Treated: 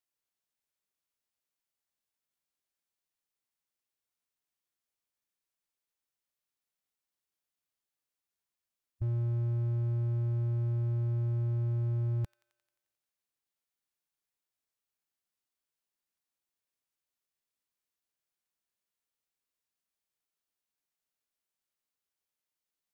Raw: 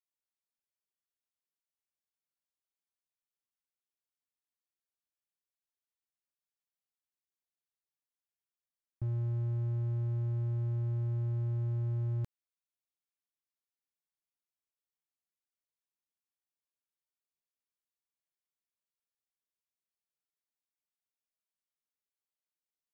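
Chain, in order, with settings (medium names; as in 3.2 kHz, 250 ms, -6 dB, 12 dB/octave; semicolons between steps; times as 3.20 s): formant shift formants -5 st; feedback echo behind a high-pass 88 ms, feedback 66%, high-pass 1.5 kHz, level -16 dB; trim +3.5 dB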